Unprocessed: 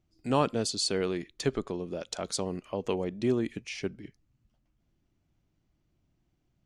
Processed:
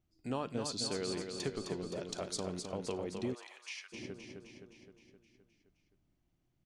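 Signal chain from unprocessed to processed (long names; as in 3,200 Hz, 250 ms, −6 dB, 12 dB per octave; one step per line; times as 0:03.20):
downward compressor 3 to 1, threshold −29 dBFS, peak gain reduction 8 dB
repeating echo 260 ms, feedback 60%, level −6 dB
flanger 1.5 Hz, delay 9 ms, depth 1.7 ms, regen −88%
0:03.33–0:03.92: high-pass filter 620 Hz → 1,400 Hz 24 dB per octave
level −1 dB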